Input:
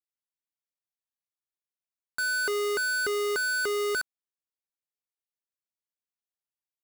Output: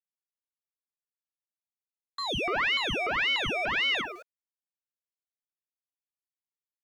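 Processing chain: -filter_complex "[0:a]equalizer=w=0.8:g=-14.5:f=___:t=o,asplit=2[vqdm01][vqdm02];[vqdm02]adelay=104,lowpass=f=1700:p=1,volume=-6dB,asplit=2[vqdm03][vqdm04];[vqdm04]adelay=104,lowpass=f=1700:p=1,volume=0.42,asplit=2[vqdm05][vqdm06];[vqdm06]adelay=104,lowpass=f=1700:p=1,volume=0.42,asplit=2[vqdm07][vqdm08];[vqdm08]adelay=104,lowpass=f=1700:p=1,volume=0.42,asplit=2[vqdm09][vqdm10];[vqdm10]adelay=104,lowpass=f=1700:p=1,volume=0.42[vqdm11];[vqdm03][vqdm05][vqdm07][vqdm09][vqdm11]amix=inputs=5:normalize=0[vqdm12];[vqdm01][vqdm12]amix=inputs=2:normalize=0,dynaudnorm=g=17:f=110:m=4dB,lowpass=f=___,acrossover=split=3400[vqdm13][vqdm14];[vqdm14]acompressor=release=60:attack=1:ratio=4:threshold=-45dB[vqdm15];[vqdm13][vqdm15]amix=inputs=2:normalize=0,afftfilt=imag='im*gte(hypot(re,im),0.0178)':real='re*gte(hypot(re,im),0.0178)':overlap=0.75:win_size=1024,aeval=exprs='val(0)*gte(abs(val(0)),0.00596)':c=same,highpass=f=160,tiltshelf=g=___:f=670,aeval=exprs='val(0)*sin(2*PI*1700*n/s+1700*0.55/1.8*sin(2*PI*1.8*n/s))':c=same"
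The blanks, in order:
270, 11000, 7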